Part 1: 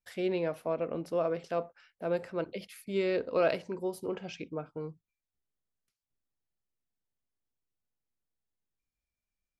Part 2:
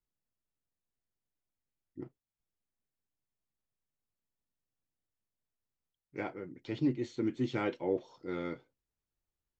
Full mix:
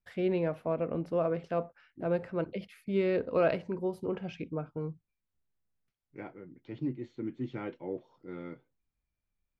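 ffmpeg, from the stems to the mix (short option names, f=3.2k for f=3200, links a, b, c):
-filter_complex "[0:a]volume=0dB[a];[1:a]highpass=120,acontrast=39,volume=-12dB[b];[a][b]amix=inputs=2:normalize=0,bass=f=250:g=7,treble=f=4k:g=-14"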